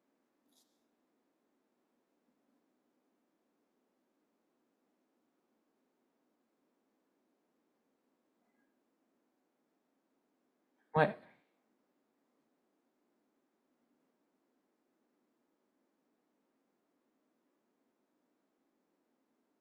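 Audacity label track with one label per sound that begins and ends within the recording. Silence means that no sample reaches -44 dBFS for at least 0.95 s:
10.940000	11.140000	sound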